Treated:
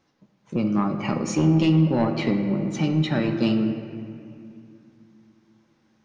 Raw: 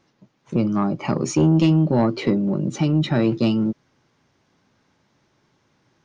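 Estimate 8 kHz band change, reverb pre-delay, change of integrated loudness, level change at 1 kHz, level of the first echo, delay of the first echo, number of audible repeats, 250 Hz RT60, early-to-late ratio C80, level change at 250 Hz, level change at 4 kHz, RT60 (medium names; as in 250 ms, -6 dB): no reading, 4 ms, -2.5 dB, -2.0 dB, no echo, no echo, no echo, 3.4 s, 8.0 dB, -2.0 dB, -1.0 dB, 2.4 s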